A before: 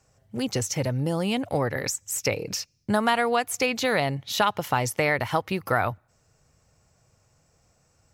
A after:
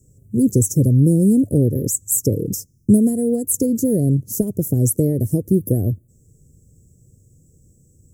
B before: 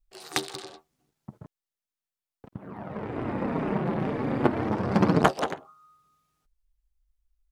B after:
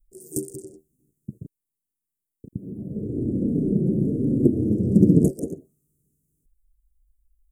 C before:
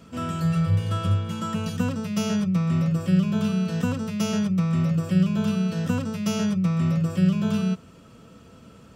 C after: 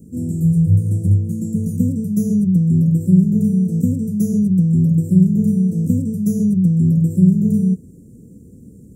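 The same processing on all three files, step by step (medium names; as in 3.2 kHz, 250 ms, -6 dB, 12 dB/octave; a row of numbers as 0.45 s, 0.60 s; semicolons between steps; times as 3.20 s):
inverse Chebyshev band-stop 840–4000 Hz, stop band 50 dB; peak normalisation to -3 dBFS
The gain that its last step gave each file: +14.0 dB, +7.5 dB, +8.5 dB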